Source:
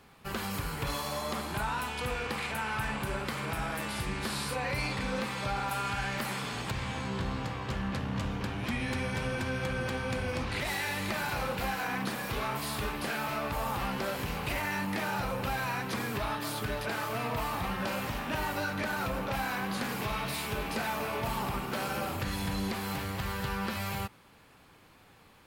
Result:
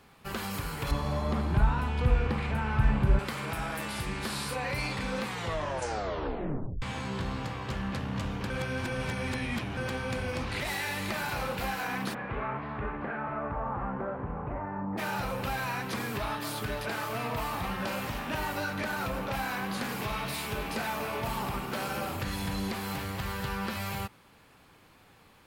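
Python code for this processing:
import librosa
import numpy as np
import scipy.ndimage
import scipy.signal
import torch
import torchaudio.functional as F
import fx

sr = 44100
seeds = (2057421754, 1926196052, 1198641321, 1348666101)

y = fx.riaa(x, sr, side='playback', at=(0.91, 3.19))
y = fx.lowpass(y, sr, hz=fx.line((12.13, 2300.0), (14.97, 1100.0)), slope=24, at=(12.13, 14.97), fade=0.02)
y = fx.edit(y, sr, fx.tape_stop(start_s=5.23, length_s=1.59),
    fx.reverse_span(start_s=8.5, length_s=1.27), tone=tone)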